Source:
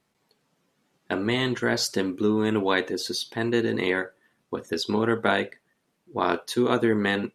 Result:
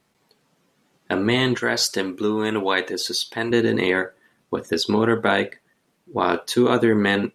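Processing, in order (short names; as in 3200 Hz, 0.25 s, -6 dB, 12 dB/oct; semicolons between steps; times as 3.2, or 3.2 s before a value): 1.57–3.51 low shelf 370 Hz -9.5 dB; in parallel at -0.5 dB: limiter -15 dBFS, peak gain reduction 9.5 dB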